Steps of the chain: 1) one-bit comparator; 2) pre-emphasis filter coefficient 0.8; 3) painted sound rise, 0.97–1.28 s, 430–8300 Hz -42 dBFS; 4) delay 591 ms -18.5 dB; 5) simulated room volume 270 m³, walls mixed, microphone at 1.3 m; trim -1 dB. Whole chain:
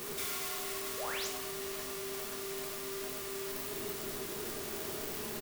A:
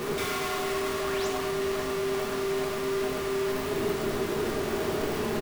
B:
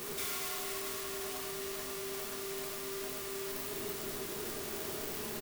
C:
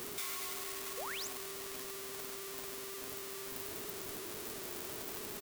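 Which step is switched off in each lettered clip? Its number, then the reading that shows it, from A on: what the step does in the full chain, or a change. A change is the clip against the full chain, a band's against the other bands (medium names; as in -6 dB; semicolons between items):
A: 2, 8 kHz band -12.0 dB; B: 3, crest factor change -2.0 dB; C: 5, 500 Hz band -2.5 dB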